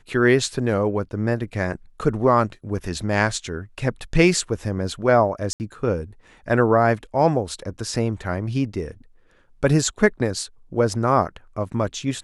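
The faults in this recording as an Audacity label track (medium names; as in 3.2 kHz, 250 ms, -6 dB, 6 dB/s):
5.530000	5.600000	dropout 69 ms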